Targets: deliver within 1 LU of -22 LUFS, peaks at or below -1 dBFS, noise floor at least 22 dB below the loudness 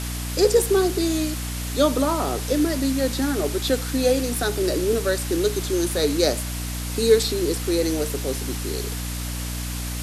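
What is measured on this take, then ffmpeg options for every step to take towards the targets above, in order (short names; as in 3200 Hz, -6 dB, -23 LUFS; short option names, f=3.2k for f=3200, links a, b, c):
hum 60 Hz; harmonics up to 300 Hz; hum level -27 dBFS; noise floor -29 dBFS; noise floor target -45 dBFS; loudness -23.0 LUFS; peak -4.5 dBFS; loudness target -22.0 LUFS
-> -af "bandreject=f=60:t=h:w=6,bandreject=f=120:t=h:w=6,bandreject=f=180:t=h:w=6,bandreject=f=240:t=h:w=6,bandreject=f=300:t=h:w=6"
-af "afftdn=nr=16:nf=-29"
-af "volume=1dB"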